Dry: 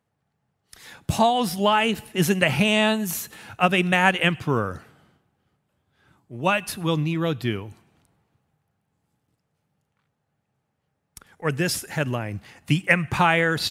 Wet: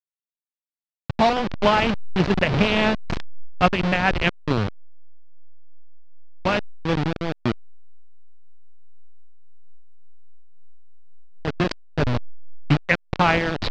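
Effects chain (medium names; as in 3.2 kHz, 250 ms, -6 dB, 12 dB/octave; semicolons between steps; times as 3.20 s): send-on-delta sampling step -16.5 dBFS; low-pass 4.6 kHz 24 dB/octave; random flutter of the level, depth 55%; trim +3.5 dB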